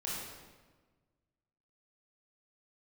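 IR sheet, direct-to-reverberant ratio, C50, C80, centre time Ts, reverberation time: −6.5 dB, −2.0 dB, 1.0 dB, 94 ms, 1.4 s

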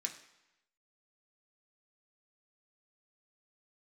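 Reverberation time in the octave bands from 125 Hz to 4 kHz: 0.90, 0.85, 0.90, 1.0, 1.0, 0.90 seconds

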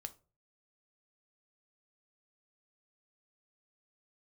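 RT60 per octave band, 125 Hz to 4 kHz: 0.55, 0.40, 0.40, 0.30, 0.25, 0.25 seconds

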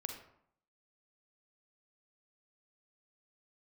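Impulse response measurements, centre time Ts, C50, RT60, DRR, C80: 25 ms, 5.5 dB, 0.65 s, 3.5 dB, 9.0 dB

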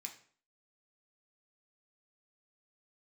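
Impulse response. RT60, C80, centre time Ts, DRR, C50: 0.50 s, 14.5 dB, 14 ms, 1.5 dB, 10.5 dB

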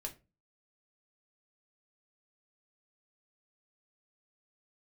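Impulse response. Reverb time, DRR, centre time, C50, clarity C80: 0.30 s, 1.5 dB, 9 ms, 16.0 dB, 22.5 dB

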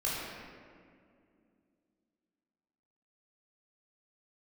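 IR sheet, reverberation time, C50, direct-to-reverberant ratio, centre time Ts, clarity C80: 2.3 s, −2.0 dB, −8.0 dB, 127 ms, 0.0 dB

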